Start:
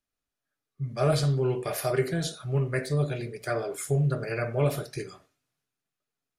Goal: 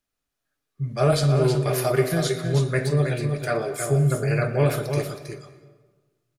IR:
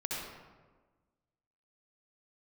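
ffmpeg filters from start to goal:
-filter_complex "[0:a]aecho=1:1:320:0.473,asplit=2[a][b];[1:a]atrim=start_sample=2205,adelay=118[c];[b][c]afir=irnorm=-1:irlink=0,volume=-17.5dB[d];[a][d]amix=inputs=2:normalize=0,volume=4.5dB"

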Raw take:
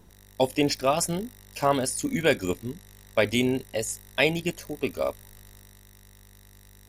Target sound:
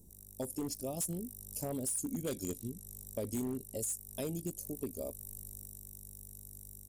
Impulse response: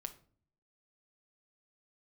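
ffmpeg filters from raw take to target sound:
-filter_complex "[0:a]firequalizer=gain_entry='entry(270,0);entry(1400,-28);entry(7900,9)':delay=0.05:min_phase=1,asoftclip=type=hard:threshold=-21dB,dynaudnorm=f=560:g=3:m=3.5dB,asettb=1/sr,asplit=3[a][b][c];[a]atrim=end=2.274[d];[b]atrim=start=2.27:end=2.69,asetpts=PTS-STARTPTS,afade=t=in:d=0.004:c=qsin,afade=t=out:st=0.416:d=0.004:c=qsin,equalizer=f=3.1k:w=0.75:g=11.5[e];[c]atrim=start=2.686[f];[d][e]acrossfade=d=0.004:c1=hsin:c2=qsin[g];[g][f]acrossfade=d=0.004:c1=qsin:c2=hsin,acompressor=threshold=-34dB:ratio=2.5,volume=-4.5dB"

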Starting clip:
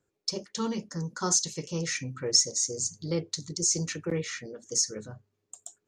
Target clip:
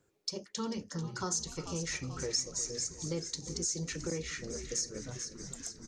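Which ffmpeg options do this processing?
-filter_complex "[0:a]asplit=2[a][b];[b]asplit=7[c][d][e][f][g][h][i];[c]adelay=438,afreqshift=-100,volume=-13dB[j];[d]adelay=876,afreqshift=-200,volume=-17.3dB[k];[e]adelay=1314,afreqshift=-300,volume=-21.6dB[l];[f]adelay=1752,afreqshift=-400,volume=-25.9dB[m];[g]adelay=2190,afreqshift=-500,volume=-30.2dB[n];[h]adelay=2628,afreqshift=-600,volume=-34.5dB[o];[i]adelay=3066,afreqshift=-700,volume=-38.8dB[p];[j][k][l][m][n][o][p]amix=inputs=7:normalize=0[q];[a][q]amix=inputs=2:normalize=0,acompressor=threshold=-48dB:ratio=2,asplit=2[r][s];[s]adelay=355,lowpass=f=4.3k:p=1,volume=-15dB,asplit=2[t][u];[u]adelay=355,lowpass=f=4.3k:p=1,volume=0.52,asplit=2[v][w];[w]adelay=355,lowpass=f=4.3k:p=1,volume=0.52,asplit=2[x][y];[y]adelay=355,lowpass=f=4.3k:p=1,volume=0.52,asplit=2[z][aa];[aa]adelay=355,lowpass=f=4.3k:p=1,volume=0.52[ab];[t][v][x][z][ab]amix=inputs=5:normalize=0[ac];[r][ac]amix=inputs=2:normalize=0,volume=5dB"

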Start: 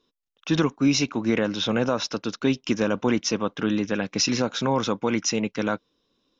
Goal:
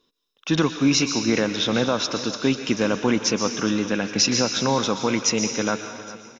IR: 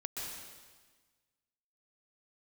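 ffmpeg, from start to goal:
-filter_complex "[0:a]aecho=1:1:408|816|1224|1632:0.141|0.072|0.0367|0.0187,asplit=2[a][b];[1:a]atrim=start_sample=2205,lowshelf=f=450:g=-10,highshelf=f=5.2k:g=12[c];[b][c]afir=irnorm=-1:irlink=0,volume=-5.5dB[d];[a][d]amix=inputs=2:normalize=0"

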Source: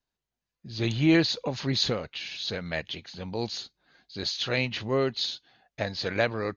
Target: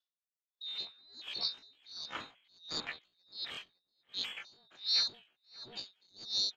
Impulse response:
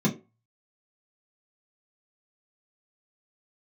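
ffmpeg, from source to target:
-filter_complex "[0:a]afftfilt=real='real(if(lt(b,920),b+92*(1-2*mod(floor(b/92),2)),b),0)':imag='imag(if(lt(b,920),b+92*(1-2*mod(floor(b/92),2)),b),0)':win_size=2048:overlap=0.75,acrossover=split=260[a][b];[b]alimiter=limit=-18.5dB:level=0:latency=1:release=71[c];[a][c]amix=inputs=2:normalize=0,asplit=2[d][e];[e]adelay=568,lowpass=f=820:p=1,volume=-6dB,asplit=2[f][g];[g]adelay=568,lowpass=f=820:p=1,volume=0.35,asplit=2[h][i];[i]adelay=568,lowpass=f=820:p=1,volume=0.35,asplit=2[j][k];[k]adelay=568,lowpass=f=820:p=1,volume=0.35[l];[d][f][h][j][l]amix=inputs=5:normalize=0,highpass=f=310:t=q:w=0.5412,highpass=f=310:t=q:w=1.307,lowpass=f=3.1k:t=q:w=0.5176,lowpass=f=3.1k:t=q:w=0.7071,lowpass=f=3.1k:t=q:w=1.932,afreqshift=-220,asetrate=85689,aresample=44100,atempo=0.514651,aeval=exprs='val(0)*pow(10,-36*(0.5-0.5*cos(2*PI*1.4*n/s))/20)':c=same"

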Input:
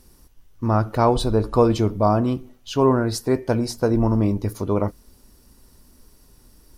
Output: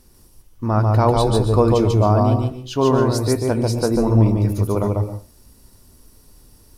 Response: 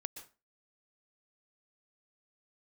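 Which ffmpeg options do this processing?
-filter_complex "[0:a]asplit=2[a][b];[b]equalizer=f=100:t=o:w=0.67:g=7,equalizer=f=250:t=o:w=0.67:g=-5,equalizer=f=1.6k:t=o:w=0.67:g=-9,equalizer=f=10k:t=o:w=0.67:g=4[c];[1:a]atrim=start_sample=2205,adelay=144[d];[c][d]afir=irnorm=-1:irlink=0,volume=2dB[e];[a][e]amix=inputs=2:normalize=0,asettb=1/sr,asplit=3[f][g][h];[f]atrim=end=3.204[i];[g]atrim=start=3.2:end=3.75,asetpts=PTS-STARTPTS,afade=t=in:d=0.004:c=qsin,afade=t=out:st=0.546:d=0.004:c=qsin,aeval=exprs='val(0)+0.00447*sin(2*PI*8100*n/s)':c=same[j];[h]atrim=start=3.746[k];[i][j]acrossfade=d=0.004:c1=hsin:c2=qsin[l];[l][k]acrossfade=d=0.004:c1=qsin:c2=hsin"

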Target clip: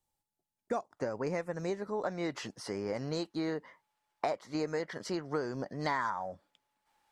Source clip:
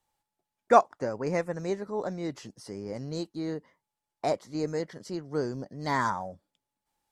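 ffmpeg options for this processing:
-af "asetnsamples=n=441:p=0,asendcmd='0.97 equalizer g 3.5;2.04 equalizer g 12',equalizer=f=1.5k:w=0.34:g=-8,acompressor=threshold=-29dB:ratio=6,volume=-1.5dB"

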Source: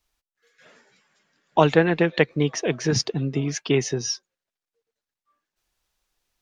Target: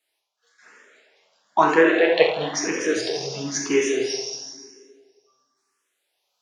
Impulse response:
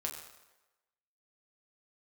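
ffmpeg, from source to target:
-filter_complex "[0:a]highpass=400[a];[1:a]atrim=start_sample=2205,asetrate=23814,aresample=44100[b];[a][b]afir=irnorm=-1:irlink=0,asplit=2[c][d];[d]afreqshift=1[e];[c][e]amix=inputs=2:normalize=1,volume=2dB"

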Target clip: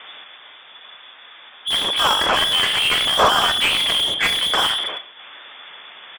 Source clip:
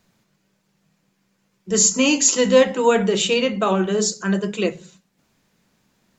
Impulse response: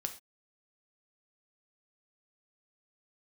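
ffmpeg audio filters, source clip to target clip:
-filter_complex "[0:a]asplit=3[a][b][c];[b]asetrate=37084,aresample=44100,atempo=1.18921,volume=-1dB[d];[c]asetrate=55563,aresample=44100,atempo=0.793701,volume=-13dB[e];[a][d][e]amix=inputs=3:normalize=0,acompressor=threshold=-14dB:ratio=6,lowpass=f=3.1k:t=q:w=0.5098,lowpass=f=3.1k:t=q:w=0.6013,lowpass=f=3.1k:t=q:w=0.9,lowpass=f=3.1k:t=q:w=2.563,afreqshift=-3600,asplit=2[f][g];[g]highpass=f=720:p=1,volume=35dB,asoftclip=type=tanh:threshold=-6.5dB[h];[f][h]amix=inputs=2:normalize=0,lowpass=f=2k:p=1,volume=-6dB,asplit=2[i][j];[1:a]atrim=start_sample=2205,asetrate=23373,aresample=44100,lowpass=f=3.7k:w=0.5412,lowpass=f=3.7k:w=1.3066[k];[j][k]afir=irnorm=-1:irlink=0,volume=-11dB[l];[i][l]amix=inputs=2:normalize=0"

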